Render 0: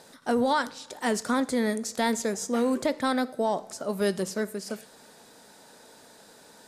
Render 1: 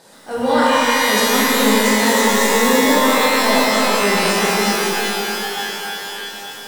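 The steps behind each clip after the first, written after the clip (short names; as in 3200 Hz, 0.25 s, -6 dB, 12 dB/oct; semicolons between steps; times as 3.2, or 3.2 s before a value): transient shaper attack -8 dB, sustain +1 dB; shimmer reverb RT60 3.8 s, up +12 st, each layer -2 dB, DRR -8 dB; gain +2.5 dB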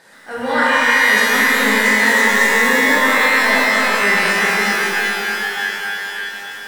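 bell 1800 Hz +14 dB 0.91 oct; gain -5 dB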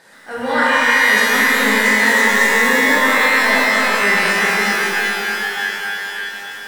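nothing audible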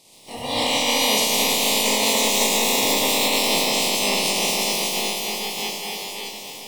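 spectral limiter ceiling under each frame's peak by 21 dB; Butterworth band-stop 1500 Hz, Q 1; gain -3.5 dB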